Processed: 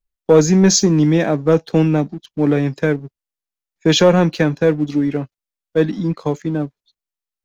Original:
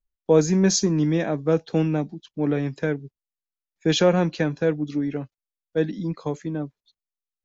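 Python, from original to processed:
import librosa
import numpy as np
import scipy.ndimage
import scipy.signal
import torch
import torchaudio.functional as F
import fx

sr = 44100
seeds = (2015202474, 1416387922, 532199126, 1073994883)

y = fx.leveller(x, sr, passes=1)
y = F.gain(torch.from_numpy(y), 4.0).numpy()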